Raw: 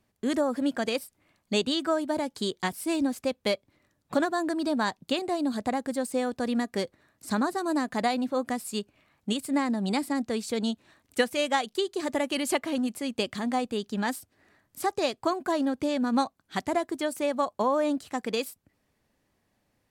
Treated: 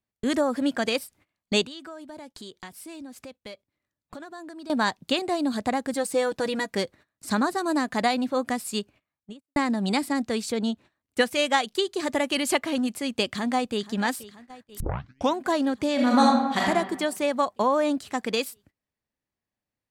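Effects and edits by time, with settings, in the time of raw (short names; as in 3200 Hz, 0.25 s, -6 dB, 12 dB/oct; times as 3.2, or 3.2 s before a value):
1.66–4.7 compressor 3:1, threshold -46 dBFS
5.93–6.75 comb 6.2 ms
8.73–9.56 studio fade out
10.52–11.21 high shelf 2100 Hz -8 dB
13.24–13.85 echo throw 0.48 s, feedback 75%, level -17.5 dB
14.8 tape start 0.58 s
15.94–16.64 reverb throw, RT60 1.1 s, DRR -4.5 dB
whole clip: tilt +4 dB/oct; gate -51 dBFS, range -20 dB; RIAA curve playback; gain +3.5 dB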